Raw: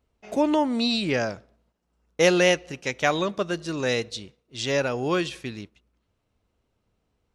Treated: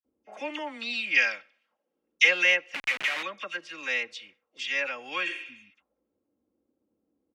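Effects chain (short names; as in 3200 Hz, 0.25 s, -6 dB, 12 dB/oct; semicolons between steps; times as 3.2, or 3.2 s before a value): 1.14–2.23 weighting filter D; 5.27–5.69 spectral repair 300–6100 Hz both; HPF 68 Hz; notch 4000 Hz, Q 7; comb 3.7 ms, depth 54%; dispersion lows, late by 49 ms, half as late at 2000 Hz; 2.74–3.23 Schmitt trigger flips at -35 dBFS; auto-wah 320–2300 Hz, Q 2.5, up, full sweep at -35.5 dBFS; gain +4.5 dB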